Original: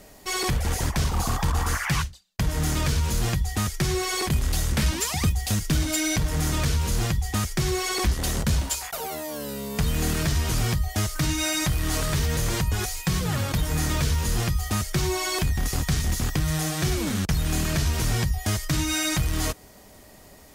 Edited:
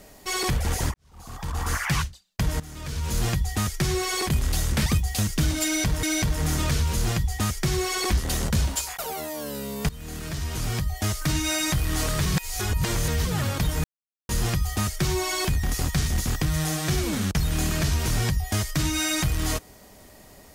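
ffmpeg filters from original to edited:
-filter_complex "[0:a]asplit=10[s0][s1][s2][s3][s4][s5][s6][s7][s8][s9];[s0]atrim=end=0.94,asetpts=PTS-STARTPTS,afade=t=out:st=0.936:d=0.004:c=hsin[s10];[s1]atrim=start=0.94:end=2.6,asetpts=PTS-STARTPTS,afade=t=in:d=0.82:c=qua,afade=t=out:st=1.656:d=0.004:c=hsin:silence=0.133352[s11];[s2]atrim=start=2.6:end=4.862,asetpts=PTS-STARTPTS,afade=t=in:d=0.58:c=qua:silence=0.133352[s12];[s3]atrim=start=5.178:end=6.352[s13];[s4]atrim=start=5.968:end=9.83,asetpts=PTS-STARTPTS,afade=t=out:st=3.858:d=0.004:c=hsin:silence=0.125893[s14];[s5]atrim=start=9.83:end=12.202,asetpts=PTS-STARTPTS,afade=t=in:d=1.29:silence=0.125893[s15];[s6]atrim=start=12.198:end=13.192,asetpts=PTS-STARTPTS,areverse[s16];[s7]atrim=start=13.188:end=13.78,asetpts=PTS-STARTPTS,afade=t=out:st=0.588:d=0.004:c=hsin[s17];[s8]atrim=start=13.78:end=14.23,asetpts=PTS-STARTPTS,volume=0[s18];[s9]atrim=start=14.23,asetpts=PTS-STARTPTS,afade=t=in:d=0.004:c=hsin[s19];[s10][s11][s12]concat=n=3:v=0:a=1[s20];[s20][s13]acrossfade=d=0.004:c1=hsin:c2=hsin[s21];[s14][s15]concat=n=2:v=0:a=1[s22];[s21][s22]acrossfade=d=0.004:c1=hsin:c2=hsin[s23];[s23][s16]acrossfade=d=0.004:c1=hsin:c2=hsin[s24];[s17][s18][s19]concat=n=3:v=0:a=1[s25];[s24][s25]acrossfade=d=0.004:c1=hsin:c2=hsin"

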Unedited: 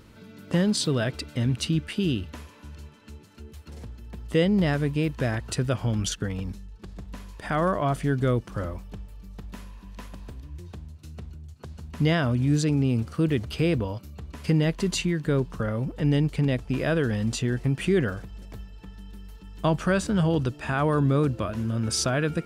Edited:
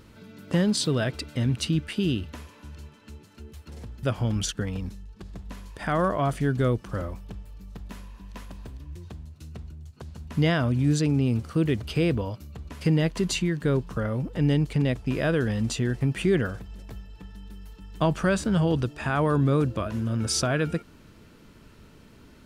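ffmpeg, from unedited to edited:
-filter_complex "[0:a]asplit=2[s0][s1];[s0]atrim=end=4.032[s2];[s1]atrim=start=5.658[s3];[s2][s3]acrossfade=d=0.004:c1=hsin:c2=hsin"

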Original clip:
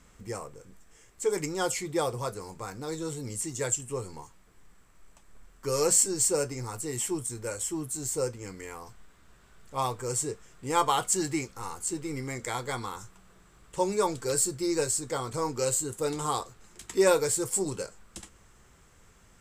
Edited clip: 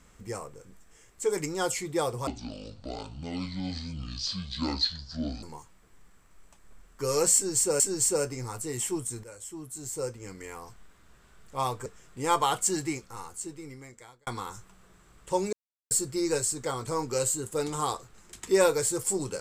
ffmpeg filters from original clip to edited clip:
-filter_complex "[0:a]asplit=9[s0][s1][s2][s3][s4][s5][s6][s7][s8];[s0]atrim=end=2.274[s9];[s1]atrim=start=2.27:end=4.07,asetpts=PTS-STARTPTS,asetrate=25137,aresample=44100,atrim=end_sample=139263,asetpts=PTS-STARTPTS[s10];[s2]atrim=start=4.066:end=6.442[s11];[s3]atrim=start=5.988:end=7.43,asetpts=PTS-STARTPTS,afade=t=out:st=1.438:d=0.004:c=hsin:silence=0.211349[s12];[s4]atrim=start=7.43:end=10.052,asetpts=PTS-STARTPTS,afade=t=in:d=1.33:silence=0.211349[s13];[s5]atrim=start=10.318:end=12.73,asetpts=PTS-STARTPTS,afade=t=out:st=0.802:d=1.61[s14];[s6]atrim=start=12.73:end=13.99,asetpts=PTS-STARTPTS,afade=t=in:d=0.004:c=hsin,afade=t=out:st=1.256:d=0.004:c=hsin[s15];[s7]atrim=start=13.99:end=14.37,asetpts=PTS-STARTPTS,volume=0[s16];[s8]atrim=start=14.37,asetpts=PTS-STARTPTS,afade=t=in:d=0.004:c=hsin[s17];[s9][s10]acrossfade=d=0.004:c1=hsin:c2=hsin[s18];[s18][s11]acrossfade=d=0.004:c1=hsin:c2=hsin[s19];[s12][s13]concat=n=2:v=0:a=1[s20];[s19][s20]acrossfade=d=0.004:c1=hsin:c2=hsin[s21];[s14][s15][s16][s17]concat=n=4:v=0:a=1[s22];[s21][s22]acrossfade=d=0.004:c1=hsin:c2=hsin"

